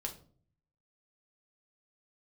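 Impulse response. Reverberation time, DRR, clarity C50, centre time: 0.45 s, 1.5 dB, 11.5 dB, 12 ms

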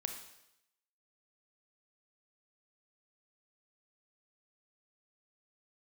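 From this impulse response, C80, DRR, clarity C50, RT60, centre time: 9.5 dB, 5.0 dB, 6.5 dB, 0.85 s, 23 ms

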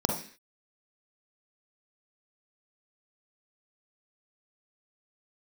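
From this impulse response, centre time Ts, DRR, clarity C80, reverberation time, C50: 28 ms, 1.5 dB, 10.0 dB, 0.45 s, 4.5 dB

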